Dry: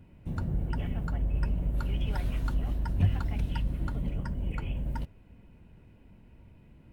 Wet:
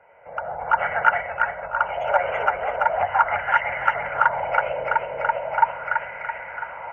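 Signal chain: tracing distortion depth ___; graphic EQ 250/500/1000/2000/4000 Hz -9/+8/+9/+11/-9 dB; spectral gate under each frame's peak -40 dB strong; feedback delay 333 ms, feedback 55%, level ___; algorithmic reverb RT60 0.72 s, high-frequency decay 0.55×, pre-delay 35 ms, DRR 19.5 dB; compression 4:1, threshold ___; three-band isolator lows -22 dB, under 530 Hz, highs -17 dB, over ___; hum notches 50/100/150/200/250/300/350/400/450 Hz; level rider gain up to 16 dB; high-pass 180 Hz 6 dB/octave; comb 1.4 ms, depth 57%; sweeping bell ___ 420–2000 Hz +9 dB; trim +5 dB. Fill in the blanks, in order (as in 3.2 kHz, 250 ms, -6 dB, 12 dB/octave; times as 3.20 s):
0.21 ms, -4 dB, -38 dBFS, 2.4 kHz, 0.4 Hz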